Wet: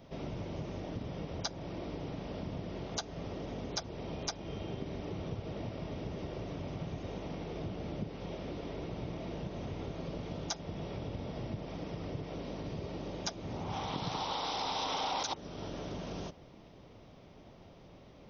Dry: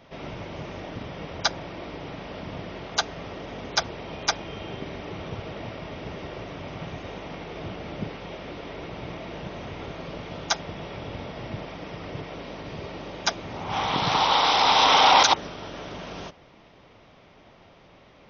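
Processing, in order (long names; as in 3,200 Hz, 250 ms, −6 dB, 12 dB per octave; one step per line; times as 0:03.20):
parametric band 1,800 Hz −11.5 dB 2.8 octaves
downward compressor 3 to 1, threshold −38 dBFS, peak gain reduction 13 dB
level +1.5 dB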